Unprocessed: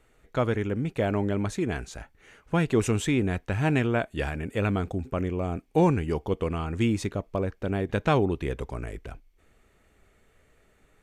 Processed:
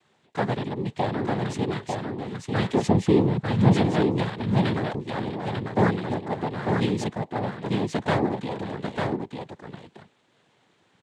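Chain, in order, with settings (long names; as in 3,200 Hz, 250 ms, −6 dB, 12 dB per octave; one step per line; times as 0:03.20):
0:02.86–0:03.72: tilt shelving filter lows +8 dB, about 800 Hz
cochlear-implant simulation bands 6
on a send: single-tap delay 897 ms −4 dB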